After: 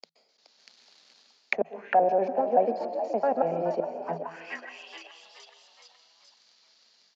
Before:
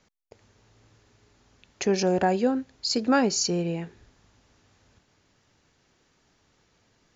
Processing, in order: slices in reverse order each 95 ms, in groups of 4; AGC gain up to 8.5 dB; dynamic EQ 2300 Hz, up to +8 dB, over -42 dBFS, Q 1.5; reverse; compressor 4:1, threshold -29 dBFS, peak gain reduction 16.5 dB; reverse; tilt +4.5 dB/oct; sample leveller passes 3; rippled Chebyshev high-pass 160 Hz, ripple 6 dB; frequency-shifting echo 0.423 s, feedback 51%, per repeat +80 Hz, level -10 dB; plate-style reverb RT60 0.78 s, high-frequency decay 0.8×, pre-delay 0.115 s, DRR 10 dB; envelope low-pass 670–4700 Hz down, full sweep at -25 dBFS; gain -5 dB

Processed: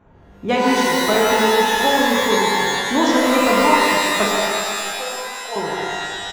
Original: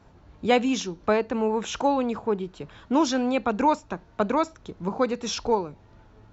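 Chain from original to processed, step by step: Wiener smoothing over 9 samples; 4.25–5.56 band-pass 680 Hz, Q 6.3; speakerphone echo 0.15 s, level -8 dB; shimmer reverb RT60 2.1 s, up +12 st, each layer -2 dB, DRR -3 dB; gain +1 dB

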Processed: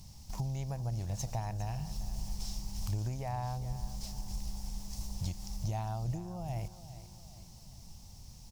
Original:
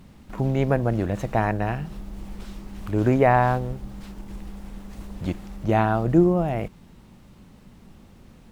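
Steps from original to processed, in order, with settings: compressor 6:1, threshold -28 dBFS, peak gain reduction 15.5 dB; EQ curve 120 Hz 0 dB, 270 Hz -17 dB, 450 Hz -17 dB, 850 Hz -4 dB, 1400 Hz -18 dB, 3700 Hz -2 dB, 5400 Hz +14 dB, 8100 Hz +6 dB; feedback echo 0.405 s, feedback 47%, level -14 dB

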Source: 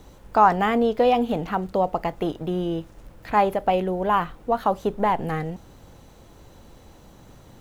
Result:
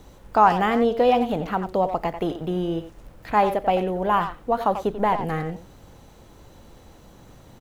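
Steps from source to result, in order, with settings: speakerphone echo 90 ms, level -9 dB

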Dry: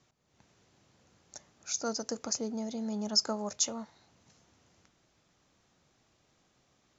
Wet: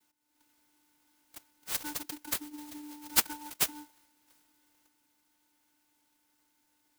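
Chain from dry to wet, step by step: differentiator; vocoder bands 16, square 297 Hz; clock jitter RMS 0.11 ms; gain +5 dB

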